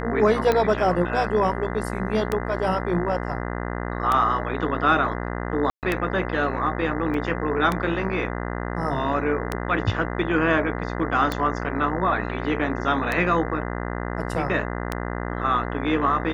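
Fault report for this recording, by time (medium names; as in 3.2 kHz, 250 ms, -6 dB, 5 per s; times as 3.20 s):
buzz 60 Hz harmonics 34 -29 dBFS
tick 33 1/3 rpm -9 dBFS
5.70–5.83 s: dropout 128 ms
7.14 s: dropout 2.6 ms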